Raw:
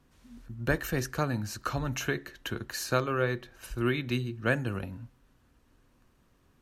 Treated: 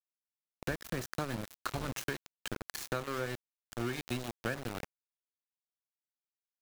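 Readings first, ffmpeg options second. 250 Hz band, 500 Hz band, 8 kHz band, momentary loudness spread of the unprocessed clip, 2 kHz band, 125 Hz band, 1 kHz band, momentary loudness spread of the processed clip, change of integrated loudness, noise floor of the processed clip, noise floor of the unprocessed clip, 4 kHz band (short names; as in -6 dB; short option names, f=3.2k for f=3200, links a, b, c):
-7.5 dB, -8.0 dB, -5.5 dB, 10 LU, -7.5 dB, -9.5 dB, -6.0 dB, 6 LU, -7.5 dB, under -85 dBFS, -66 dBFS, -5.0 dB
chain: -af "aeval=exprs='val(0)*gte(abs(val(0)),0.0335)':c=same,acompressor=threshold=-32dB:ratio=5"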